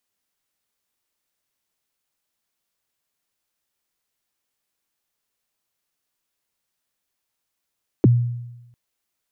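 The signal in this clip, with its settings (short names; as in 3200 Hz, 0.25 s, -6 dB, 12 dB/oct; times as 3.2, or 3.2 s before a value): kick drum length 0.70 s, from 440 Hz, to 120 Hz, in 23 ms, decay 0.99 s, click off, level -8 dB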